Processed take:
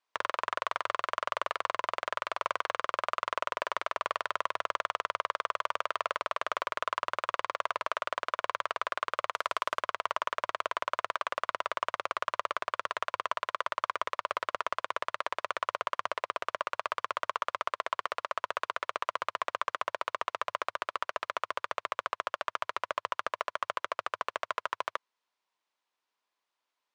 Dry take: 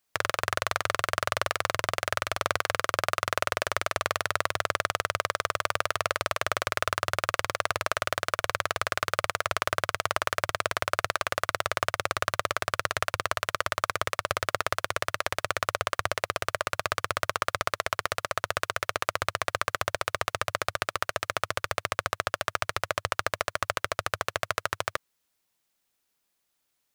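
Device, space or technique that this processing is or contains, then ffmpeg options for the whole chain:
intercom: -filter_complex "[0:a]asettb=1/sr,asplit=3[s0][s1][s2];[s0]atrim=end=9.334[s3];[s1]atrim=start=9.33:end=9.81,asetpts=PTS-STARTPTS,afade=t=in:d=0.004:c=qsin,afade=t=out:st=0.476:d=0.004:c=qsin,aemphasis=mode=production:type=50kf[s4];[s2]atrim=start=9.806[s5];[s3][s4]acrossfade=d=0.004:c1=hsin:c2=qsin[s6];[s6][s5]acrossfade=d=0.004:c1=qsin:c2=hsin,highpass=360,lowpass=4300,equalizer=f=1000:t=o:w=0.36:g=9.5,asoftclip=type=tanh:threshold=0.282,volume=0.631"

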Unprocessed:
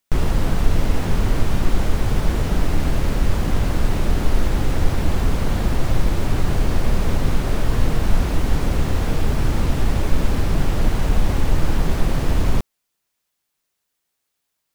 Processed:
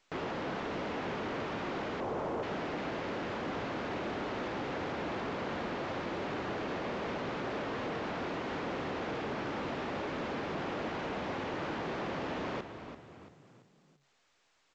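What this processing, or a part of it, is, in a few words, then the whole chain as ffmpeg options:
telephone: -filter_complex "[0:a]asettb=1/sr,asplit=3[s0][s1][s2];[s0]atrim=end=2.004[s3];[s1]atrim=start=2:end=2.43,asetpts=PTS-STARTPTS,afade=t=in:d=0.004:c=qsin,afade=t=out:st=0.426:d=0.004:c=qsin,equalizer=f=500:t=o:w=1:g=5,equalizer=f=1000:t=o:w=1:g=5,equalizer=f=2000:t=o:w=1:g=-11,equalizer=f=4000:t=o:w=1:g=-9[s4];[s2]atrim=start=2.426[s5];[s3][s4]acrossfade=d=0.004:c1=hsin:c2=qsin[s6];[s6][s5]acrossfade=d=0.004:c1=qsin:c2=hsin,asplit=5[s7][s8][s9][s10][s11];[s8]adelay=337,afreqshift=35,volume=0.251[s12];[s9]adelay=674,afreqshift=70,volume=0.0933[s13];[s10]adelay=1011,afreqshift=105,volume=0.0343[s14];[s11]adelay=1348,afreqshift=140,volume=0.0127[s15];[s7][s12][s13][s14][s15]amix=inputs=5:normalize=0,highpass=320,lowpass=3000,asoftclip=type=tanh:threshold=0.0596,volume=0.562" -ar 16000 -c:a pcm_alaw

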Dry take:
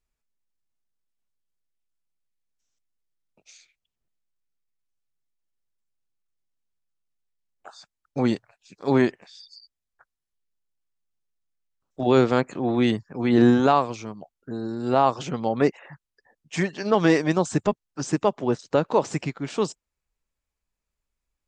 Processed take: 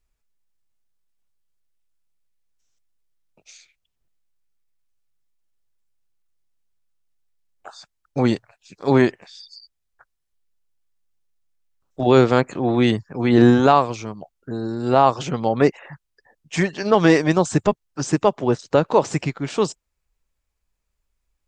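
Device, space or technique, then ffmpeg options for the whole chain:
low shelf boost with a cut just above: -af "lowshelf=f=93:g=5.5,equalizer=f=230:t=o:w=0.79:g=-2.5,volume=1.68"

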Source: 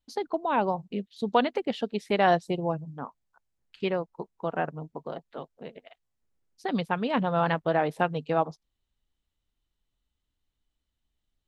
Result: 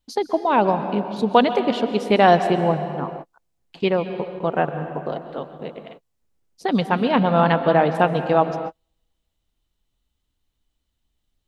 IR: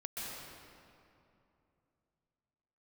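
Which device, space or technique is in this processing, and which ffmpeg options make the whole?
keyed gated reverb: -filter_complex "[0:a]asettb=1/sr,asplit=3[s0][s1][s2];[s0]atrim=end=6.894[s3];[s1]atrim=start=6.89:end=7.95,asetpts=PTS-STARTPTS,afade=t=in:d=0.004:c=qsin,afade=t=out:st=1.056:d=0.004:c=qsin,lowpass=f=5500:w=0.5412,lowpass=f=5500:w=1.3066[s4];[s2]atrim=start=7.946[s5];[s3][s4]acrossfade=d=0.004:c1=hsin:c2=qsin[s6];[s6][s5]acrossfade=d=0.004:c1=qsin:c2=hsin,equalizer=f=1700:t=o:w=0.99:g=-2.5,asplit=3[s7][s8][s9];[1:a]atrim=start_sample=2205[s10];[s8][s10]afir=irnorm=-1:irlink=0[s11];[s9]apad=whole_len=506159[s12];[s11][s12]sidechaingate=range=0.00316:threshold=0.00178:ratio=16:detection=peak,volume=0.422[s13];[s7][s13]amix=inputs=2:normalize=0,volume=2.11"

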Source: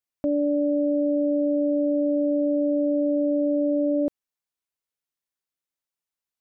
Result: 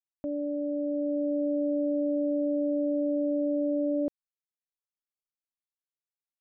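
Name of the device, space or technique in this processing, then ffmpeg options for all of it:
voice memo with heavy noise removal: -af "anlmdn=6.31,dynaudnorm=f=290:g=7:m=1.58,volume=0.355"

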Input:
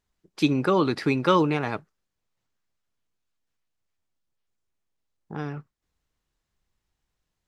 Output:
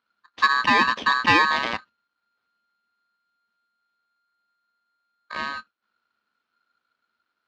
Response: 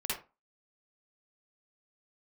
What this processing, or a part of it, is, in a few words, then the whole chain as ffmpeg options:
ring modulator pedal into a guitar cabinet: -af "aeval=exprs='val(0)*sgn(sin(2*PI*1400*n/s))':c=same,highpass=89,equalizer=f=140:t=q:w=4:g=-7,equalizer=f=220:t=q:w=4:g=9,equalizer=f=990:t=q:w=4:g=3,lowpass=f=4400:w=0.5412,lowpass=f=4400:w=1.3066,volume=1.26"

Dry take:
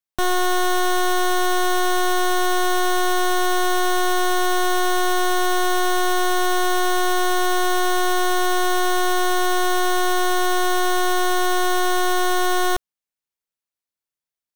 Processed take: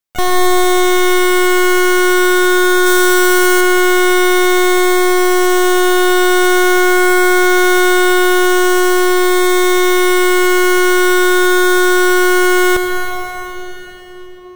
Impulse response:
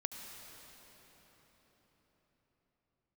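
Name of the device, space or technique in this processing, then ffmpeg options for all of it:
shimmer-style reverb: -filter_complex "[0:a]asplit=2[s0][s1];[s1]asetrate=88200,aresample=44100,atempo=0.5,volume=0.316[s2];[s0][s2]amix=inputs=2:normalize=0[s3];[1:a]atrim=start_sample=2205[s4];[s3][s4]afir=irnorm=-1:irlink=0,asettb=1/sr,asplit=3[s5][s6][s7];[s5]atrim=end=2.864[s8];[s6]atrim=start=2.86:end=3.61,asetpts=PTS-STARTPTS,afade=t=in:d=0.004:c=qsin,afade=t=out:st=0.746:d=0.004:c=qsin,highshelf=f=4800:g=5.5[s9];[s7]atrim=start=3.606[s10];[s8][s9]acrossfade=d=0.004:c1=hsin:c2=qsin[s11];[s11][s10]acrossfade=d=0.004:c1=qsin:c2=hsin,volume=2.51"

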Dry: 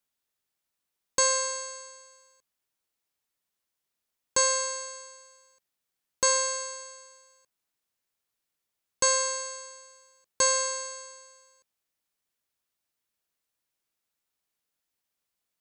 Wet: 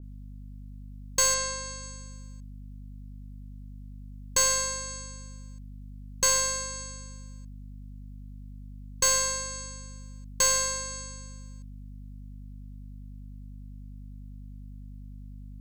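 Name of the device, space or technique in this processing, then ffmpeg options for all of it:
valve amplifier with mains hum: -filter_complex "[0:a]equalizer=f=630:w=0.54:g=-6.5,aeval=exprs='(tanh(10*val(0)+0.25)-tanh(0.25))/10':c=same,aeval=exprs='val(0)+0.00501*(sin(2*PI*50*n/s)+sin(2*PI*2*50*n/s)/2+sin(2*PI*3*50*n/s)/3+sin(2*PI*4*50*n/s)/4+sin(2*PI*5*50*n/s)/5)':c=same,asettb=1/sr,asplit=3[s0][s1][s2];[s0]atrim=end=1.344[s3];[s1]atrim=start=1.34:end=1.83,asetpts=PTS-STARTPTS,afade=t=in:d=0.004:c=qsin,afade=t=out:st=0.486:d=0.004:c=qsin,lowpass=6900[s4];[s2]atrim=start=1.826[s5];[s3][s4]acrossfade=d=0.004:c1=hsin:c2=qsin[s6];[s6][s5]acrossfade=d=0.004:c1=qsin:c2=hsin,adynamicequalizer=threshold=0.00794:dfrequency=2500:dqfactor=0.7:tfrequency=2500:tqfactor=0.7:attack=5:release=100:ratio=0.375:range=2:mode=cutabove:tftype=highshelf,volume=1.68"

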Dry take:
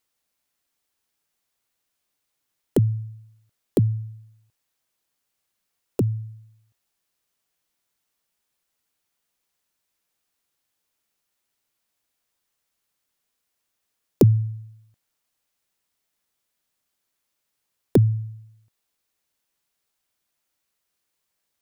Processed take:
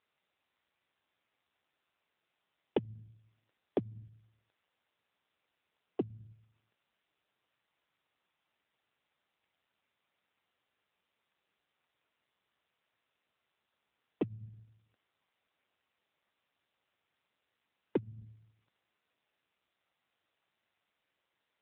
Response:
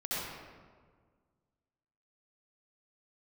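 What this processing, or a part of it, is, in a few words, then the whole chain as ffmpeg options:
voicemail: -af "highpass=390,lowpass=3200,acompressor=threshold=0.0355:ratio=8,volume=1.78" -ar 8000 -c:a libopencore_amrnb -b:a 7950

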